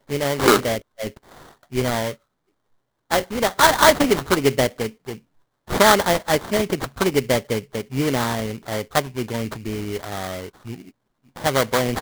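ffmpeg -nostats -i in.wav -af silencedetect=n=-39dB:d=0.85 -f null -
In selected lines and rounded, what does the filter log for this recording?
silence_start: 2.14
silence_end: 3.11 | silence_duration: 0.97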